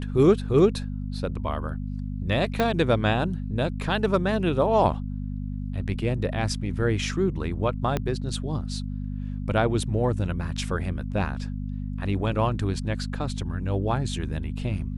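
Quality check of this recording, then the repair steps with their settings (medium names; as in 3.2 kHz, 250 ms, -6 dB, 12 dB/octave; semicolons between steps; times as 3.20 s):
hum 50 Hz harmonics 5 -31 dBFS
2.60 s: pop -10 dBFS
7.97 s: pop -12 dBFS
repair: de-click; de-hum 50 Hz, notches 5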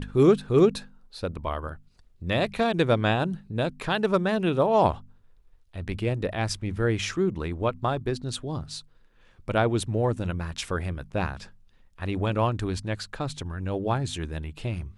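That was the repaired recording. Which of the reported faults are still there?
2.60 s: pop
7.97 s: pop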